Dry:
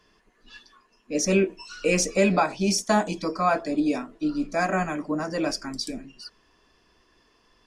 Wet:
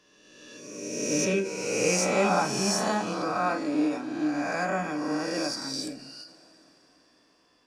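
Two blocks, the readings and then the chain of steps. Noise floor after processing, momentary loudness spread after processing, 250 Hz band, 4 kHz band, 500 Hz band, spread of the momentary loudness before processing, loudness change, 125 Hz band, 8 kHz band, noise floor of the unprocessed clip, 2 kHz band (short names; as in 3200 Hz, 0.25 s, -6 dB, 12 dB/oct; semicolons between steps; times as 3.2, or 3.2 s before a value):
-64 dBFS, 14 LU, -3.0 dB, 0.0 dB, -2.5 dB, 11 LU, -2.0 dB, -4.0 dB, +0.5 dB, -64 dBFS, -1.5 dB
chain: spectral swells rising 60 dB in 1.63 s; HPF 92 Hz 12 dB/oct; two-slope reverb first 0.34 s, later 4.6 s, from -22 dB, DRR 6 dB; ending taper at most 110 dB/s; gain -7.5 dB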